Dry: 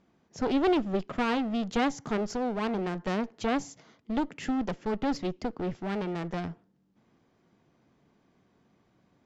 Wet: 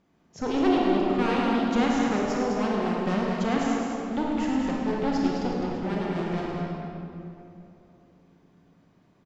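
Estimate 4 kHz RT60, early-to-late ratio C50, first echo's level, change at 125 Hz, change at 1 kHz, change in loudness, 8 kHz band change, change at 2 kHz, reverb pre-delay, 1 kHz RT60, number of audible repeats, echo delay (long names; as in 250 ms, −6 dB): 1.7 s, −3.0 dB, −9.0 dB, +5.5 dB, +4.5 dB, +4.5 dB, can't be measured, +3.5 dB, 27 ms, 2.6 s, 2, 105 ms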